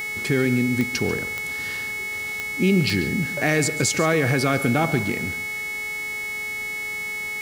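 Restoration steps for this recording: de-click; de-hum 424.3 Hz, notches 37; band-stop 2.2 kHz, Q 30; inverse comb 141 ms -15 dB

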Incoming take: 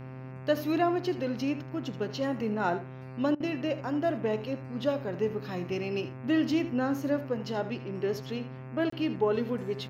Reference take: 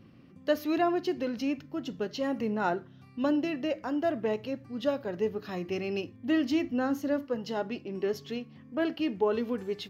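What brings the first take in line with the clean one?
de-hum 130 Hz, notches 21; interpolate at 8.90 s, 24 ms; interpolate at 3.35 s, 51 ms; inverse comb 79 ms -13.5 dB

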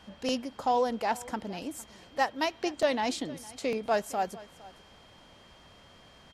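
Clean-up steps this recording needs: band-stop 3.2 kHz, Q 30; inverse comb 458 ms -20.5 dB

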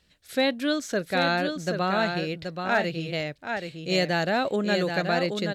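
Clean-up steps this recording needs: clip repair -13.5 dBFS; inverse comb 778 ms -6 dB

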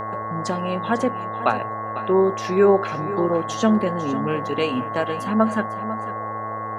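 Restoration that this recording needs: de-hum 108.9 Hz, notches 19; band-stop 1.1 kHz, Q 30; noise print and reduce 30 dB; inverse comb 499 ms -13.5 dB

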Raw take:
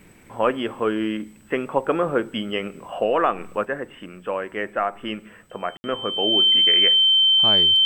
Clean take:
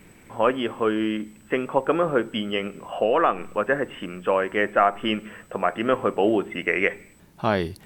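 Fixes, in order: band-stop 3.1 kHz, Q 30; room tone fill 5.77–5.84 s; trim 0 dB, from 3.65 s +5 dB

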